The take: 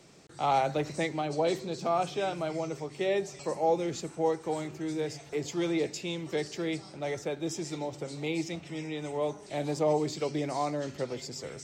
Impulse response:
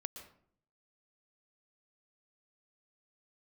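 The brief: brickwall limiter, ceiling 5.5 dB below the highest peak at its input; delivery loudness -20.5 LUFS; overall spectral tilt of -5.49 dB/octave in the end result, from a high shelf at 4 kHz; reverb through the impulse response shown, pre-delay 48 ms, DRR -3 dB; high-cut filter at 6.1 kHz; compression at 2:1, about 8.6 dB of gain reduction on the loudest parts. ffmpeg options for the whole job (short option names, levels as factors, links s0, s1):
-filter_complex "[0:a]lowpass=6100,highshelf=f=4000:g=-6.5,acompressor=threshold=0.0126:ratio=2,alimiter=level_in=2:limit=0.0631:level=0:latency=1,volume=0.501,asplit=2[s0][s1];[1:a]atrim=start_sample=2205,adelay=48[s2];[s1][s2]afir=irnorm=-1:irlink=0,volume=1.88[s3];[s0][s3]amix=inputs=2:normalize=0,volume=5.31"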